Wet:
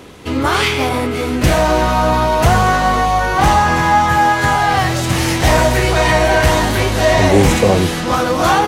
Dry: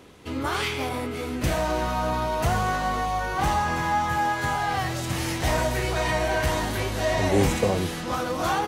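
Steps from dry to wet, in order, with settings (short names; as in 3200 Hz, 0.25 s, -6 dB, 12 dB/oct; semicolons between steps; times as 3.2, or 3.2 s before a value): maximiser +12 dB; Doppler distortion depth 0.11 ms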